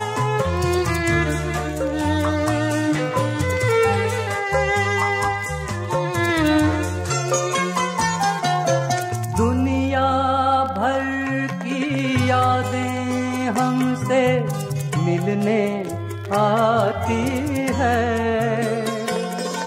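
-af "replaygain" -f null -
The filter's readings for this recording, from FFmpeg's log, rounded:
track_gain = +2.6 dB
track_peak = 0.331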